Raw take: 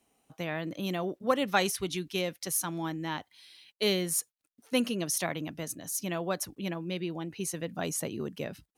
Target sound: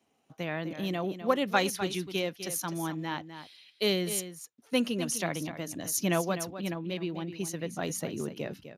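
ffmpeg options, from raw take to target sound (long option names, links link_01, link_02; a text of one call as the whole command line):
ffmpeg -i in.wav -filter_complex "[0:a]asplit=3[link_01][link_02][link_03];[link_01]afade=type=out:start_time=5.71:duration=0.02[link_04];[link_02]acontrast=53,afade=type=in:start_time=5.71:duration=0.02,afade=type=out:start_time=6.2:duration=0.02[link_05];[link_03]afade=type=in:start_time=6.2:duration=0.02[link_06];[link_04][link_05][link_06]amix=inputs=3:normalize=0,aecho=1:1:253:0.282" -ar 32000 -c:a libspeex -b:a 36k out.spx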